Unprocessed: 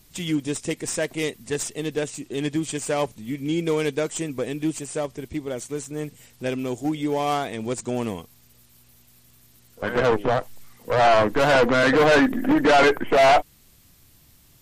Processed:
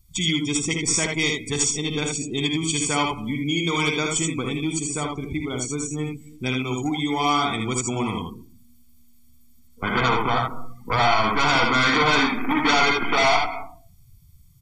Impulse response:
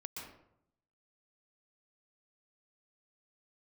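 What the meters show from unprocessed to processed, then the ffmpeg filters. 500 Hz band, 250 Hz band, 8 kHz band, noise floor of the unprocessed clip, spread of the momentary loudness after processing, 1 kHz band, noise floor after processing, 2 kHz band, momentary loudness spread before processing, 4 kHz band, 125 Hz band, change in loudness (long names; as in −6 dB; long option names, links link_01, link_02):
−6.5 dB, 0.0 dB, +8.0 dB, −56 dBFS, 10 LU, +1.0 dB, −51 dBFS, +2.5 dB, 14 LU, +7.0 dB, +3.5 dB, +0.5 dB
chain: -filter_complex "[0:a]aecho=1:1:0.9:0.79,aecho=1:1:55|79:0.447|0.631,asplit=2[link_01][link_02];[1:a]atrim=start_sample=2205[link_03];[link_02][link_03]afir=irnorm=-1:irlink=0,volume=-10.5dB[link_04];[link_01][link_04]amix=inputs=2:normalize=0,acrossover=split=580|7500[link_05][link_06][link_07];[link_05]acompressor=threshold=-24dB:ratio=4[link_08];[link_06]acompressor=threshold=-19dB:ratio=4[link_09];[link_07]acompressor=threshold=-50dB:ratio=4[link_10];[link_08][link_09][link_10]amix=inputs=3:normalize=0,afftdn=noise_reduction=22:noise_floor=-38,highshelf=frequency=3400:gain=10.5"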